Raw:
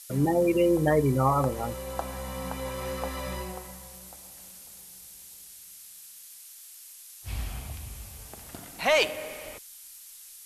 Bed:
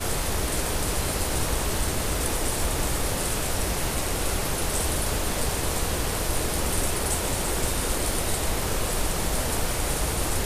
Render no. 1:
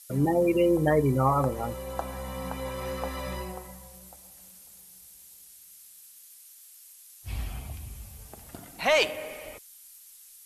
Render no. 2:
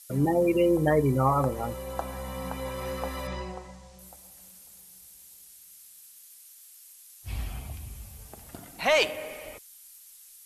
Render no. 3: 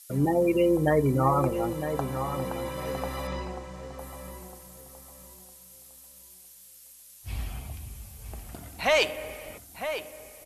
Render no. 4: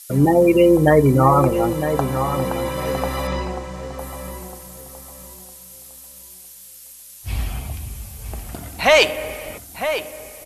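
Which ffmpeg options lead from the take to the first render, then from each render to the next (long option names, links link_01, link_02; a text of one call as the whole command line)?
ffmpeg -i in.wav -af "afftdn=noise_reduction=6:noise_floor=-48" out.wav
ffmpeg -i in.wav -filter_complex "[0:a]asettb=1/sr,asplit=3[link_01][link_02][link_03];[link_01]atrim=end=3.274[link_04];[link_02]atrim=start=3.27:end=3.99,asetpts=PTS-STARTPTS,afade=type=in:duration=0.004:curve=qsin,afade=type=out:start_time=0.716:duration=0.004:curve=qsin,lowpass=frequency=6900:width=0.5412,lowpass=frequency=6900:width=1.3066[link_05];[link_03]atrim=start=3.986[link_06];[link_04][link_05]acrossfade=duration=0.004:curve1=hsin:curve2=qsin[link_07];[link_07][link_06]acrossfade=duration=0.004:curve1=qsin:curve2=hsin" out.wav
ffmpeg -i in.wav -filter_complex "[0:a]asplit=2[link_01][link_02];[link_02]adelay=957,lowpass=frequency=2300:poles=1,volume=-8.5dB,asplit=2[link_03][link_04];[link_04]adelay=957,lowpass=frequency=2300:poles=1,volume=0.3,asplit=2[link_05][link_06];[link_06]adelay=957,lowpass=frequency=2300:poles=1,volume=0.3,asplit=2[link_07][link_08];[link_08]adelay=957,lowpass=frequency=2300:poles=1,volume=0.3[link_09];[link_01][link_03][link_05][link_07][link_09]amix=inputs=5:normalize=0" out.wav
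ffmpeg -i in.wav -af "volume=9.5dB,alimiter=limit=-2dB:level=0:latency=1" out.wav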